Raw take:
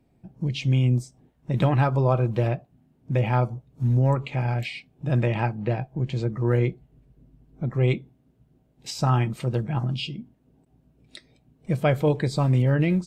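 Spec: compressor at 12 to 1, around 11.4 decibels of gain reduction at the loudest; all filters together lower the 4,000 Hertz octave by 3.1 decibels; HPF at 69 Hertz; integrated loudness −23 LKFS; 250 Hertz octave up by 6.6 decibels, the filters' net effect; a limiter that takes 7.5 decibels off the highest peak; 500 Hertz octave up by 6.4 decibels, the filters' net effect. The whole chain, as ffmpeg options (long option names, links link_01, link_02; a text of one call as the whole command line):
ffmpeg -i in.wav -af "highpass=69,equalizer=frequency=250:width_type=o:gain=8,equalizer=frequency=500:width_type=o:gain=5.5,equalizer=frequency=4000:width_type=o:gain=-4.5,acompressor=threshold=-22dB:ratio=12,volume=8dB,alimiter=limit=-11.5dB:level=0:latency=1" out.wav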